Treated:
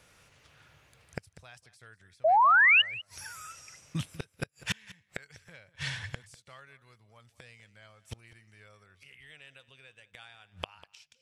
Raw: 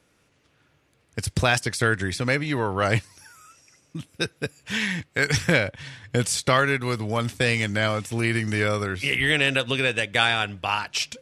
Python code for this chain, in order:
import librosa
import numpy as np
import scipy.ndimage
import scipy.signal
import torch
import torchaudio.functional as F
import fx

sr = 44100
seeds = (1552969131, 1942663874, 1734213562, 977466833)

p1 = fx.gate_flip(x, sr, shuts_db=-22.0, range_db=-36)
p2 = fx.spec_paint(p1, sr, seeds[0], shape='rise', start_s=2.24, length_s=0.58, low_hz=600.0, high_hz=3000.0, level_db=-25.0)
p3 = fx.peak_eq(p2, sr, hz=290.0, db=-11.5, octaves=1.2)
p4 = p3 + fx.echo_single(p3, sr, ms=197, db=-18.5, dry=0)
y = p4 * librosa.db_to_amplitude(5.5)